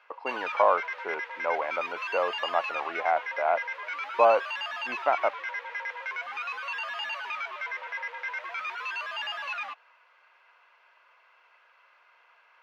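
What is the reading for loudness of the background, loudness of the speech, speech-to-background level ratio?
−33.5 LKFS, −28.5 LKFS, 5.0 dB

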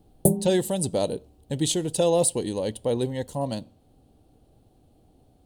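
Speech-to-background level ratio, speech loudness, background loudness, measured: −1.0 dB, −26.0 LKFS, −25.0 LKFS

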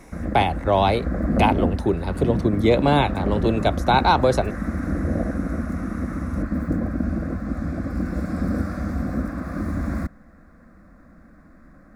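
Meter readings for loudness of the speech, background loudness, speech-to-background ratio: −21.5 LKFS, −26.5 LKFS, 5.0 dB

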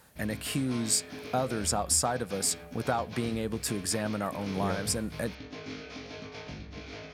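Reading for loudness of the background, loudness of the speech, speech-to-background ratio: −43.0 LKFS, −30.5 LKFS, 12.5 dB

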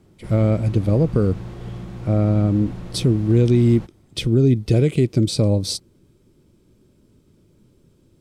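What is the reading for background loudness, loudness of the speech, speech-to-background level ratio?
−34.5 LKFS, −19.0 LKFS, 15.5 dB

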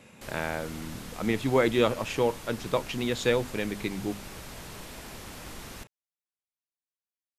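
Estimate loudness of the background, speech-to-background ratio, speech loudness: −43.0 LKFS, 14.0 dB, −29.0 LKFS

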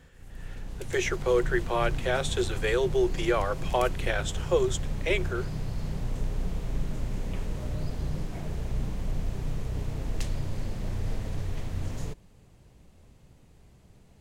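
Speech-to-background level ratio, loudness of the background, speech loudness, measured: 7.0 dB, −35.5 LKFS, −28.5 LKFS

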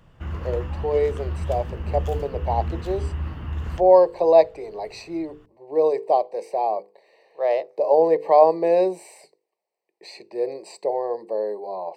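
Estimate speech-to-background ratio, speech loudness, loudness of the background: 9.0 dB, −22.0 LKFS, −31.0 LKFS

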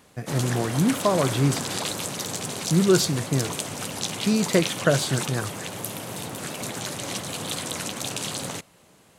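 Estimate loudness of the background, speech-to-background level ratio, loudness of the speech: −30.0 LKFS, 6.0 dB, −24.0 LKFS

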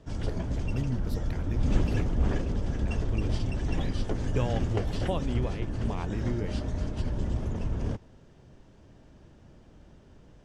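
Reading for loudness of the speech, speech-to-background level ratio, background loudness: −36.5 LKFS, −4.5 dB, −32.0 LKFS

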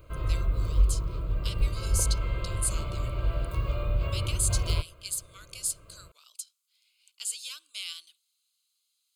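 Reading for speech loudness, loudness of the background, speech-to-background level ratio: −34.0 LKFS, −30.5 LKFS, −3.5 dB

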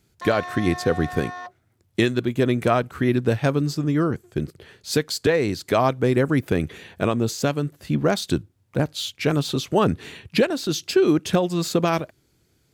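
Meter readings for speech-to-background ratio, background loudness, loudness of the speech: 11.5 dB, −34.5 LKFS, −23.0 LKFS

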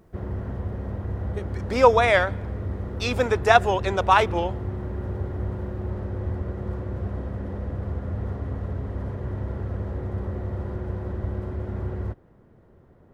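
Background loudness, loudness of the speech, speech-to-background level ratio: −31.5 LKFS, −21.0 LKFS, 10.5 dB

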